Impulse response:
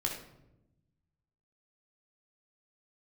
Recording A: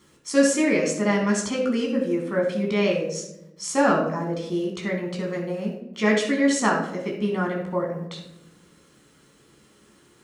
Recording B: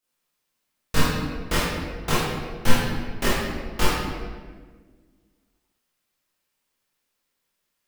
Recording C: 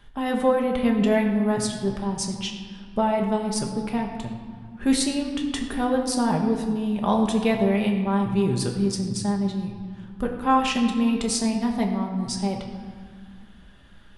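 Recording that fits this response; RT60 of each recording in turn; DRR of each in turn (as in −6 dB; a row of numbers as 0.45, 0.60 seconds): A; 0.90, 1.5, 2.0 seconds; −0.5, −10.0, 1.0 decibels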